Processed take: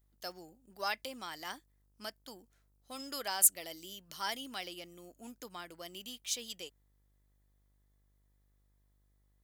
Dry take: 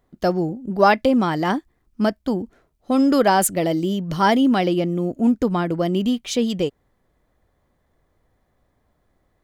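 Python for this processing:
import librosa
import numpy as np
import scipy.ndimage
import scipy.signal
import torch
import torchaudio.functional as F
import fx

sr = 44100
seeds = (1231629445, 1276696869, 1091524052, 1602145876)

y = np.diff(x, prepend=0.0)
y = fx.dmg_buzz(y, sr, base_hz=50.0, harmonics=39, level_db=-68.0, tilt_db=-9, odd_only=False)
y = y * librosa.db_to_amplitude(-4.0)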